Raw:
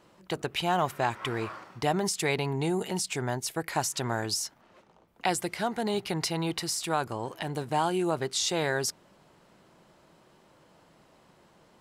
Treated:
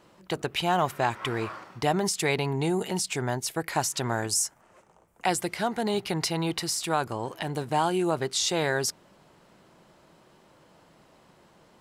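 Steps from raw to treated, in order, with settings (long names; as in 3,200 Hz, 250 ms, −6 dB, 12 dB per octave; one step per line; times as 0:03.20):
0:04.27–0:05.27: graphic EQ with 10 bands 250 Hz −6 dB, 4,000 Hz −10 dB, 8,000 Hz +10 dB
level +2 dB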